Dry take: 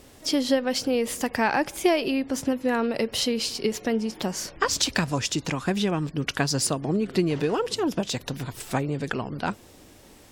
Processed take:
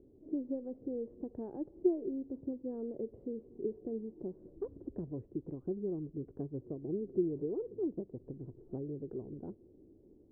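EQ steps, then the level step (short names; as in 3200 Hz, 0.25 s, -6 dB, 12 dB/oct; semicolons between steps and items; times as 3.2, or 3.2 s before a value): dynamic EQ 220 Hz, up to -6 dB, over -35 dBFS, Q 0.74; ladder low-pass 420 Hz, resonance 60%; air absorption 380 m; -1.5 dB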